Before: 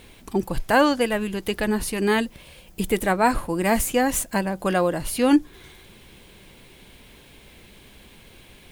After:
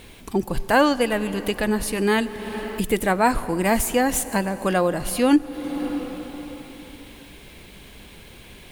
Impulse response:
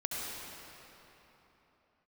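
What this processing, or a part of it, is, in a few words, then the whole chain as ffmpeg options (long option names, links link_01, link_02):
ducked reverb: -filter_complex "[0:a]asplit=3[link_01][link_02][link_03];[1:a]atrim=start_sample=2205[link_04];[link_02][link_04]afir=irnorm=-1:irlink=0[link_05];[link_03]apad=whole_len=384361[link_06];[link_05][link_06]sidechaincompress=threshold=-39dB:ratio=3:attack=45:release=291,volume=-5.5dB[link_07];[link_01][link_07]amix=inputs=2:normalize=0"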